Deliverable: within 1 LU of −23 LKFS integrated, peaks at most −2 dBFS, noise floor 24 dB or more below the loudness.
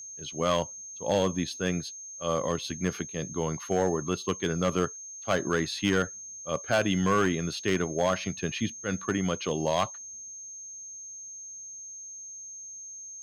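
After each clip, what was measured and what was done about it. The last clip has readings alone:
share of clipped samples 0.5%; peaks flattened at −17.5 dBFS; interfering tone 6,400 Hz; level of the tone −40 dBFS; integrated loudness −30.0 LKFS; sample peak −17.5 dBFS; target loudness −23.0 LKFS
→ clipped peaks rebuilt −17.5 dBFS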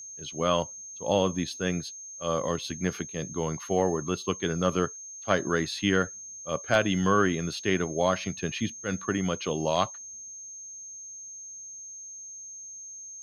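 share of clipped samples 0.0%; interfering tone 6,400 Hz; level of the tone −40 dBFS
→ notch filter 6,400 Hz, Q 30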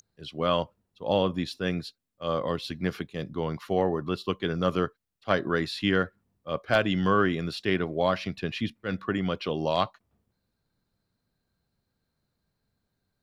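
interfering tone none found; integrated loudness −28.5 LKFS; sample peak −8.5 dBFS; target loudness −23.0 LKFS
→ level +5.5 dB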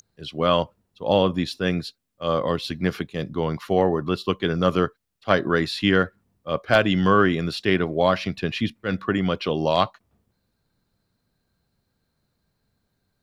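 integrated loudness −23.0 LKFS; sample peak −3.0 dBFS; background noise floor −75 dBFS

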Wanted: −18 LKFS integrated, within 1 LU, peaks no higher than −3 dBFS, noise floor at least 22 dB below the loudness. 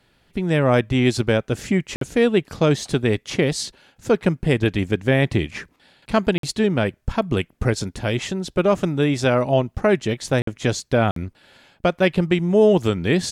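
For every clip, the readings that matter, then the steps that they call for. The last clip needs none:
number of dropouts 4; longest dropout 53 ms; integrated loudness −21.0 LKFS; sample peak −3.5 dBFS; target loudness −18.0 LKFS
→ repair the gap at 0:01.96/0:06.38/0:10.42/0:11.11, 53 ms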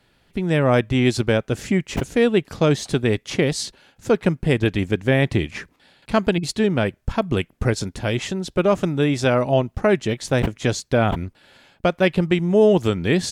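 number of dropouts 0; integrated loudness −21.0 LKFS; sample peak −3.5 dBFS; target loudness −18.0 LKFS
→ level +3 dB
brickwall limiter −3 dBFS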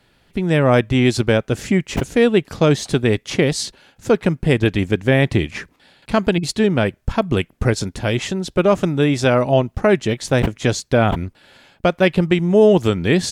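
integrated loudness −18.0 LKFS; sample peak −3.0 dBFS; background noise floor −60 dBFS

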